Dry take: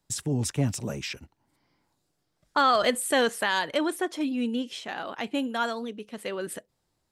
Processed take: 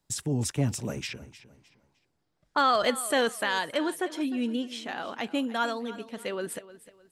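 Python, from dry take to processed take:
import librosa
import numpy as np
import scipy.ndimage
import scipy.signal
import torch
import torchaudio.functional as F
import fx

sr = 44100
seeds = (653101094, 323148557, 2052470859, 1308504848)

p1 = fx.lowpass(x, sr, hz=3400.0, slope=6, at=(1.07, 2.58))
p2 = fx.rider(p1, sr, range_db=3, speed_s=2.0)
p3 = p1 + (p2 * librosa.db_to_amplitude(0.5))
p4 = fx.echo_feedback(p3, sr, ms=306, feedback_pct=32, wet_db=-16.5)
y = p4 * librosa.db_to_amplitude(-8.0)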